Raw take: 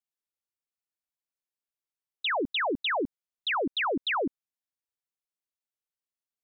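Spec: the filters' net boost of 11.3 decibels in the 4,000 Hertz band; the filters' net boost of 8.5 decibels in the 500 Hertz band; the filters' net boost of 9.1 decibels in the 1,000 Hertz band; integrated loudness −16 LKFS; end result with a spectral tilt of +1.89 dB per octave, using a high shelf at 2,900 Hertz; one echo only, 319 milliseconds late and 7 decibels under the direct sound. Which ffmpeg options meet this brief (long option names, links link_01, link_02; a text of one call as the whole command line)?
ffmpeg -i in.wav -af "equalizer=frequency=500:width_type=o:gain=8,equalizer=frequency=1000:width_type=o:gain=7.5,highshelf=frequency=2900:gain=8,equalizer=frequency=4000:width_type=o:gain=8,aecho=1:1:319:0.447,volume=4dB" out.wav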